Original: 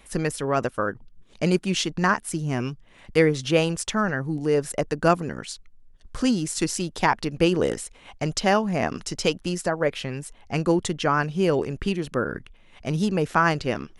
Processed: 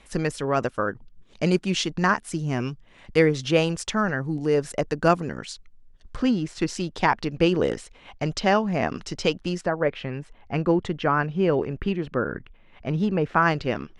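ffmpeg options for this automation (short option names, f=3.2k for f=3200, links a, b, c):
-af "asetnsamples=n=441:p=0,asendcmd='6.16 lowpass f 3100;6.68 lowpass f 5000;9.61 lowpass f 2600;13.42 lowpass f 4300',lowpass=7.3k"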